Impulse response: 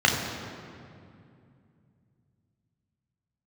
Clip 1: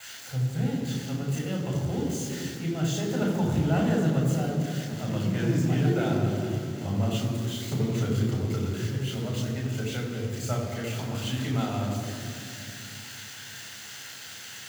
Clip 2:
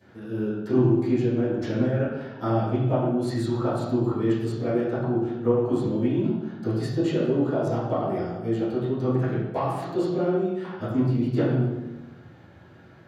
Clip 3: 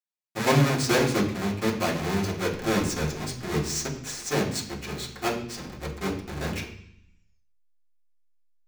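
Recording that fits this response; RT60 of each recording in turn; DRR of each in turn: 1; 2.5 s, 1.1 s, 0.65 s; -1.0 dB, -17.0 dB, -5.5 dB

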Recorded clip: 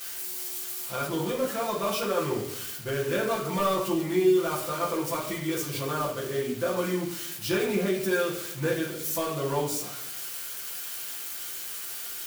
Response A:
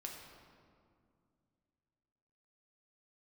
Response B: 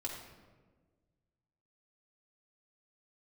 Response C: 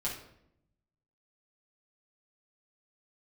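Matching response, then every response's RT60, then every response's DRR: C; 2.3 s, 1.4 s, 0.75 s; -0.5 dB, -3.0 dB, -6.0 dB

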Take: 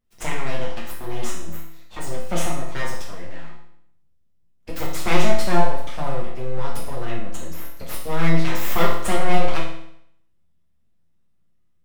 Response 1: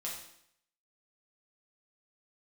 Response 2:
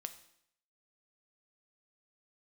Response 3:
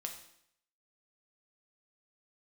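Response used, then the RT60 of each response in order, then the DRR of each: 1; 0.70 s, 0.70 s, 0.70 s; -5.0 dB, 8.5 dB, 2.5 dB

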